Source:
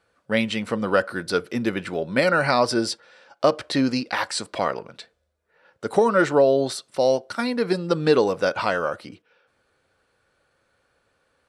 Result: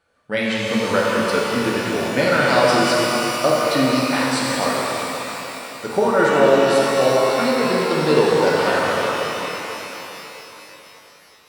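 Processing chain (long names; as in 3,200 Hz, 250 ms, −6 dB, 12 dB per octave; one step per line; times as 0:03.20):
reverb with rising layers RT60 3.8 s, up +12 semitones, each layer −8 dB, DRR −5 dB
level −1.5 dB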